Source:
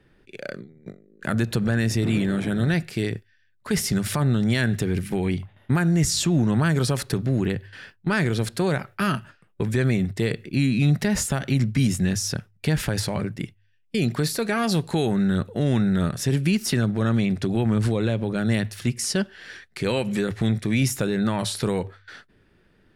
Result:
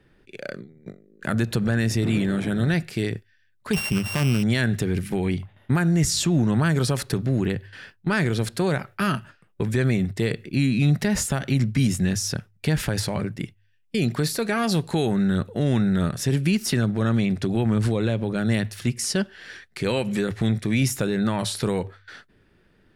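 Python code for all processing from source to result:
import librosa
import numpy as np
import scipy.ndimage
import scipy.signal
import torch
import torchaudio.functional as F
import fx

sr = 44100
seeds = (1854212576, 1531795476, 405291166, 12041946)

y = fx.chain(x, sr, fx.sample_sort(block=16),
    fx.high_shelf(hz=8600.0, db=-4.0), at=(3.73, 4.43))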